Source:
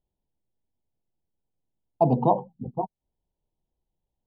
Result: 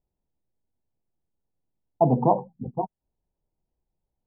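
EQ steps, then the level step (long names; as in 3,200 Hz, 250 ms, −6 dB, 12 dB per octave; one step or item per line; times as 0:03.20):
low-pass filter 1,400 Hz 12 dB per octave
+1.0 dB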